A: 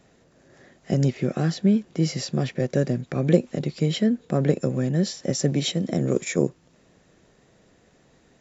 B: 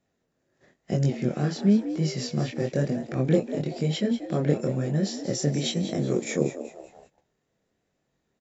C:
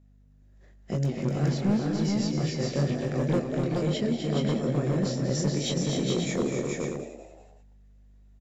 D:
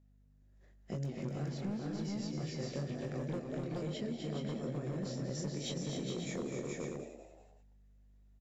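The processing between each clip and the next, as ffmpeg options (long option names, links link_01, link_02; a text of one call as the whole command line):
ffmpeg -i in.wav -filter_complex "[0:a]flanger=delay=20:depth=7.2:speed=1,asplit=5[link_01][link_02][link_03][link_04][link_05];[link_02]adelay=190,afreqshift=91,volume=-12dB[link_06];[link_03]adelay=380,afreqshift=182,volume=-20dB[link_07];[link_04]adelay=570,afreqshift=273,volume=-27.9dB[link_08];[link_05]adelay=760,afreqshift=364,volume=-35.9dB[link_09];[link_01][link_06][link_07][link_08][link_09]amix=inputs=5:normalize=0,agate=range=-15dB:threshold=-53dB:ratio=16:detection=peak" out.wav
ffmpeg -i in.wav -filter_complex "[0:a]aeval=exprs='val(0)+0.00224*(sin(2*PI*50*n/s)+sin(2*PI*2*50*n/s)/2+sin(2*PI*3*50*n/s)/3+sin(2*PI*4*50*n/s)/4+sin(2*PI*5*50*n/s)/5)':channel_layout=same,asoftclip=type=hard:threshold=-18.5dB,asplit=2[link_01][link_02];[link_02]aecho=0:1:177|253|295|423|538:0.106|0.473|0.224|0.708|0.447[link_03];[link_01][link_03]amix=inputs=2:normalize=0,volume=-3dB" out.wav
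ffmpeg -i in.wav -af "acompressor=threshold=-27dB:ratio=6,volume=-8dB" out.wav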